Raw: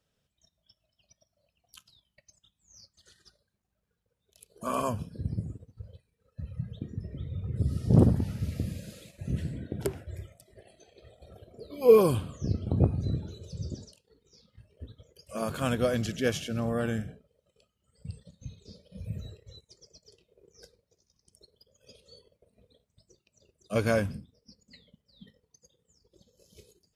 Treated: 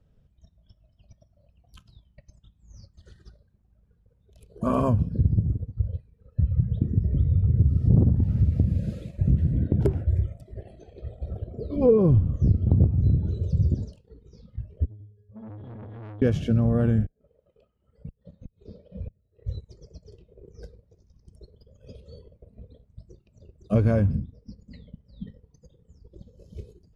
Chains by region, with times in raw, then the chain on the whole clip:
11.76–12.36 LPF 12000 Hz 24 dB/oct + tilt -2.5 dB/oct
14.85–16.22 octave resonator G#, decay 0.44 s + core saturation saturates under 1600 Hz
17.05–19.45 tone controls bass -14 dB, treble -14 dB + flipped gate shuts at -43 dBFS, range -36 dB
whole clip: tilt -4.5 dB/oct; compressor 4:1, threshold -22 dBFS; gain +4 dB

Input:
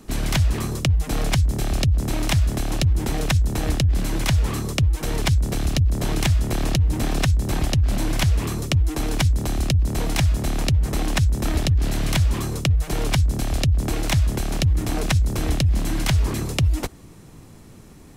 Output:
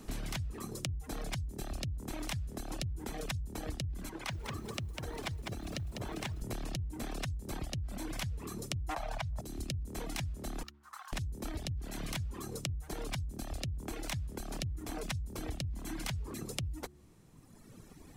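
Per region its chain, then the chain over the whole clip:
4.09–6.42 LPF 1100 Hz 6 dB/oct + tilt +2.5 dB/oct + lo-fi delay 0.2 s, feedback 35%, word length 8-bit, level -4.5 dB
8.89–9.41 EQ curve 120 Hz 0 dB, 410 Hz -14 dB, 640 Hz +13 dB, 10000 Hz -7 dB + fast leveller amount 100%
10.63–11.13 HPF 1200 Hz 24 dB/oct + resonant high shelf 1600 Hz -10.5 dB, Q 1.5 + decimation joined by straight lines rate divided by 2×
whole clip: reverb removal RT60 1.8 s; de-hum 71.9 Hz, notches 5; compressor 6:1, threshold -32 dBFS; gain -4 dB

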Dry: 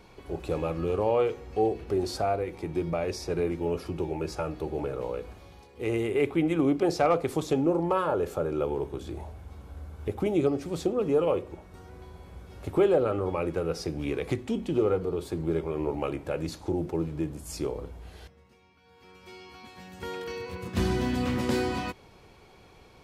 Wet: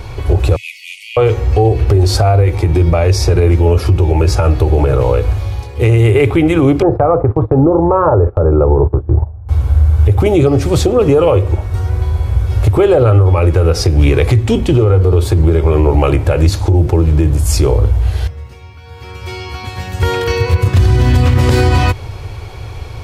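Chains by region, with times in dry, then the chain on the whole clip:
0.56–1.17 brick-wall FIR high-pass 1900 Hz + notch 4000 Hz, Q 16
6.82–9.49 LPF 1200 Hz 24 dB/oct + gate -38 dBFS, range -19 dB
whole clip: resonant low shelf 140 Hz +9.5 dB, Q 3; compressor 3:1, threshold -25 dBFS; maximiser +21.5 dB; gain -1 dB

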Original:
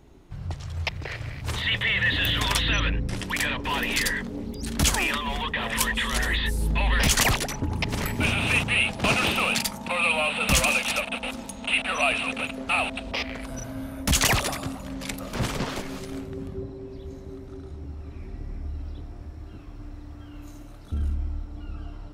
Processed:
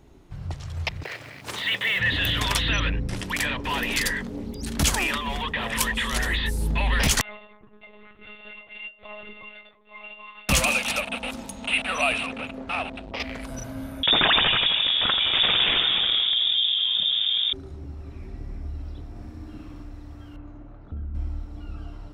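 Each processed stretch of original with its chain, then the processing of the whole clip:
1.03–2 HPF 240 Hz + companded quantiser 6-bit
7.21–10.49 metallic resonator 320 Hz, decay 0.51 s, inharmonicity 0.03 + monotone LPC vocoder at 8 kHz 210 Hz
12.26–13.2 LPF 2100 Hz 6 dB/oct + core saturation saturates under 820 Hz
14.03–17.53 feedback echo 84 ms, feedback 58%, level -13 dB + inverted band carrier 3600 Hz + fast leveller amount 70%
19.09–19.83 bell 260 Hz +4.5 dB 0.37 oct + flutter echo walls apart 10.5 m, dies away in 0.97 s
20.36–21.15 LPF 1500 Hz + compressor 4:1, threshold -30 dBFS
whole clip: dry

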